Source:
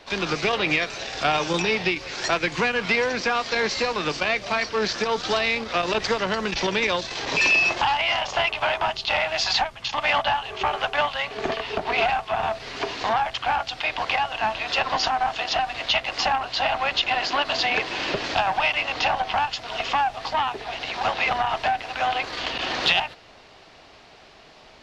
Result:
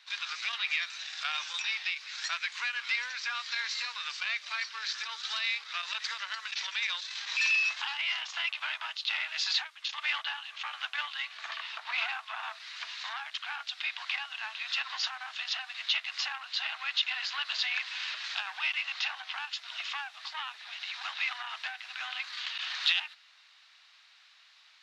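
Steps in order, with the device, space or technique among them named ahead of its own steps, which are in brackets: headphones lying on a table (HPF 1300 Hz 24 dB/oct; bell 3800 Hz +6 dB 0.21 oct); 11.34–12.68 dynamic EQ 960 Hz, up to +6 dB, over -43 dBFS, Q 1.1; gain -8 dB

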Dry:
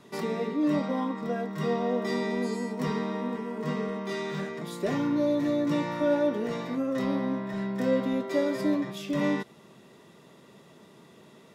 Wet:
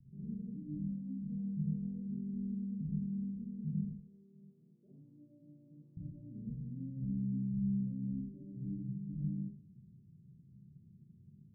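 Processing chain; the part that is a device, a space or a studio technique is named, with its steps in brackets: 3.84–5.97 HPF 600 Hz 12 dB/oct; club heard from the street (limiter -22.5 dBFS, peak gain reduction 7.5 dB; LPF 130 Hz 24 dB/oct; reverb RT60 0.55 s, pre-delay 42 ms, DRR -1.5 dB); gain +4.5 dB

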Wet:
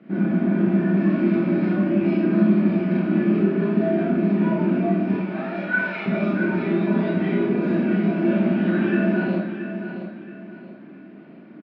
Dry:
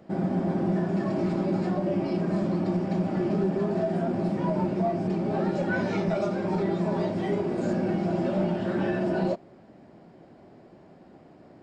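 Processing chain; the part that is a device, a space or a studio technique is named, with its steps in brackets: 5.15–6.06 HPF 610 Hz 24 dB/oct; kitchen radio (speaker cabinet 160–3500 Hz, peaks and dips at 200 Hz +10 dB, 310 Hz +8 dB, 540 Hz -7 dB, 820 Hz -9 dB, 1500 Hz +5 dB, 2400 Hz +8 dB); feedback echo 0.674 s, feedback 33%, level -9.5 dB; Schroeder reverb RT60 0.48 s, combs from 26 ms, DRR -3.5 dB; gain -1.5 dB

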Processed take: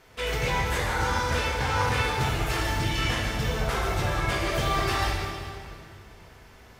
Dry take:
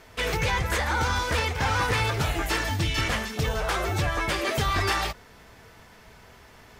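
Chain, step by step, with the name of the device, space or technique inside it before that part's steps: stairwell (reverb RT60 2.4 s, pre-delay 3 ms, DRR -3 dB); gain -6 dB

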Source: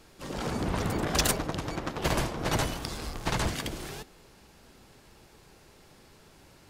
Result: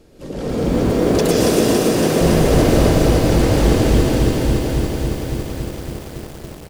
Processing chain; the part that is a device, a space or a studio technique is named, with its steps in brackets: cave (echo 0.4 s -12.5 dB; reverb RT60 4.5 s, pre-delay 0.108 s, DRR -7.5 dB); 0.92–2.21 HPF 190 Hz 12 dB/oct; resonant low shelf 710 Hz +9 dB, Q 1.5; lo-fi delay 0.28 s, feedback 80%, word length 6-bit, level -4.5 dB; gain -1.5 dB

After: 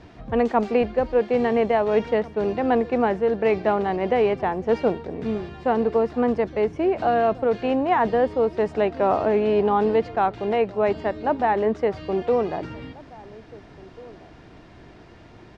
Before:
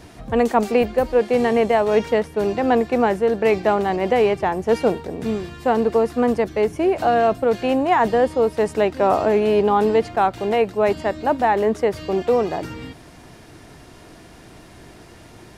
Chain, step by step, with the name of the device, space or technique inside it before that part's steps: shout across a valley (air absorption 170 m; outdoor echo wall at 290 m, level -21 dB); gain -2.5 dB

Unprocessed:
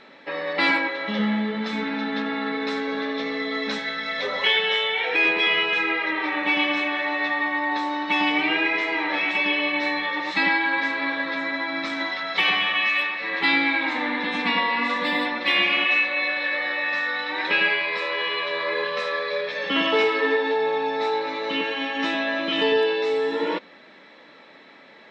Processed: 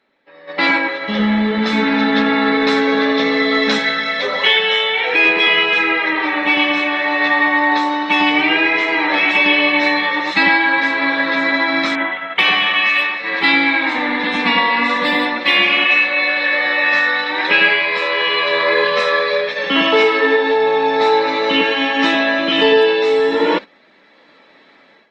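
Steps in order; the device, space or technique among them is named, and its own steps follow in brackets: 11.95–12.39 elliptic low-pass 3200 Hz, stop band 40 dB; video call (HPF 120 Hz 24 dB/oct; AGC gain up to 15.5 dB; gate -21 dBFS, range -14 dB; gain -1 dB; Opus 24 kbps 48000 Hz)

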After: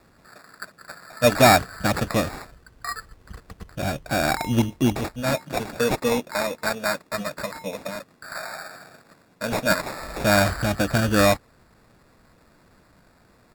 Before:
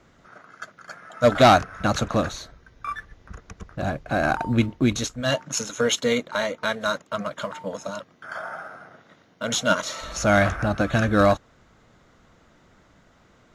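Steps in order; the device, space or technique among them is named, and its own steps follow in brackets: crushed at another speed (playback speed 0.8×; sample-and-hold 18×; playback speed 1.25×)

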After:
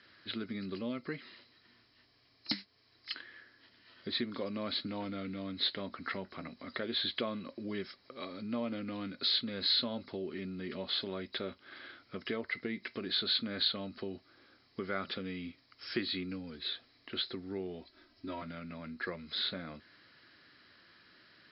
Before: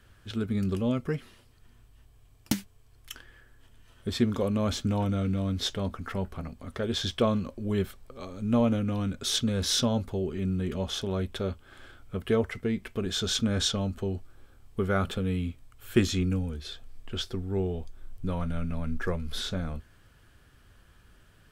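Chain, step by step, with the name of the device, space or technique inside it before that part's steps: 17.81–18.42 comb 3.1 ms, depth 98%; hearing aid with frequency lowering (nonlinear frequency compression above 3800 Hz 4:1; compressor 2.5:1, threshold -34 dBFS, peak gain reduction 12 dB; speaker cabinet 260–5600 Hz, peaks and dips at 310 Hz +4 dB, 440 Hz -5 dB, 810 Hz -5 dB, 2000 Hz +9 dB, 4000 Hz +5 dB)

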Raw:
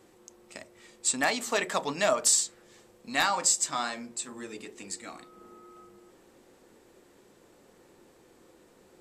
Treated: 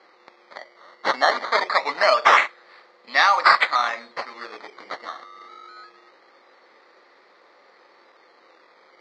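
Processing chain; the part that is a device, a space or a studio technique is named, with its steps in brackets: circuit-bent sampling toy (decimation with a swept rate 12×, swing 100% 0.24 Hz; speaker cabinet 570–4900 Hz, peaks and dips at 570 Hz +4 dB, 830 Hz +3 dB, 1200 Hz +9 dB, 2000 Hz +10 dB, 2900 Hz -6 dB, 4400 Hz +9 dB); gain +5 dB

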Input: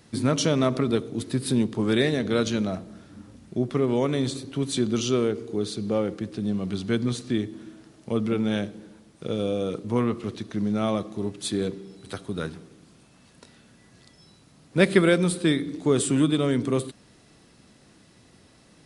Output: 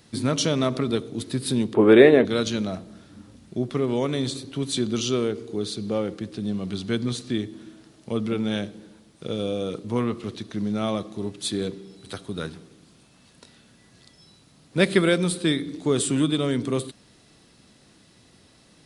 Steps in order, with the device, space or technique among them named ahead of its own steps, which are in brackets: presence and air boost (bell 3800 Hz +4 dB 0.89 oct; high shelf 9000 Hz +4 dB); 1.74–2.25 EQ curve 160 Hz 0 dB, 410 Hz +14 dB, 2600 Hz +6 dB, 5700 Hz -18 dB, 8800 Hz -8 dB; gain -1 dB

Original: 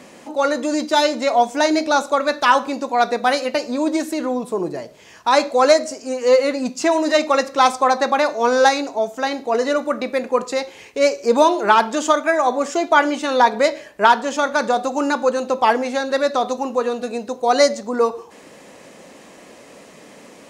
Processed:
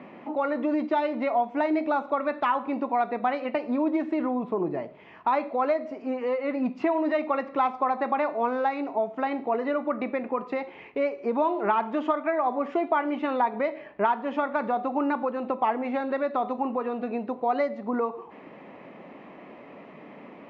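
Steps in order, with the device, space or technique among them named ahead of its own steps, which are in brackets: bass amplifier (compressor 3:1, threshold -22 dBFS, peak gain reduction 11 dB; speaker cabinet 84–2300 Hz, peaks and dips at 100 Hz -8 dB, 500 Hz -6 dB, 1600 Hz -8 dB)

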